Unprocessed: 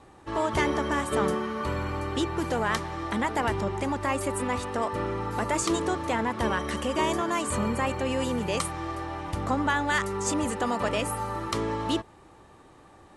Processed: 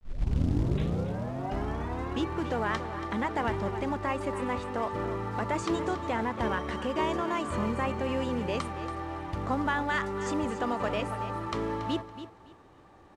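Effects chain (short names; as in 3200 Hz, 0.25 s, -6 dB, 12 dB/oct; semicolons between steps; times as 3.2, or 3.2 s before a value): tape start at the beginning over 2.30 s; high shelf 5500 Hz -9.5 dB; feedback echo 0.281 s, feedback 23%, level -12 dB; companded quantiser 6-bit; air absorption 64 m; gain -2.5 dB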